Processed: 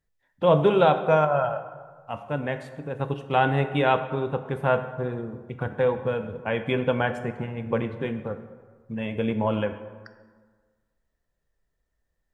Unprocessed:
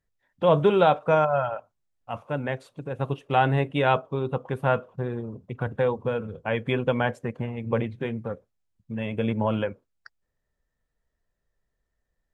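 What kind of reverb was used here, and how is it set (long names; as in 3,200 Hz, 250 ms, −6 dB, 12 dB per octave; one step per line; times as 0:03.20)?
dense smooth reverb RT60 1.5 s, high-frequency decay 0.55×, DRR 8.5 dB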